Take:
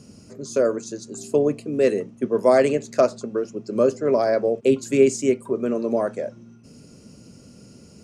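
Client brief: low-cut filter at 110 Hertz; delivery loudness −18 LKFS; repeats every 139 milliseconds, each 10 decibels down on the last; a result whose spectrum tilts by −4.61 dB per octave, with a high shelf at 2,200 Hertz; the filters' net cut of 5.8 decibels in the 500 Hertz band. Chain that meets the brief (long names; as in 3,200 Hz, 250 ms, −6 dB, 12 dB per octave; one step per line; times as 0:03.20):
high-pass filter 110 Hz
parametric band 500 Hz −7 dB
high-shelf EQ 2,200 Hz −7.5 dB
repeating echo 139 ms, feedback 32%, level −10 dB
level +8 dB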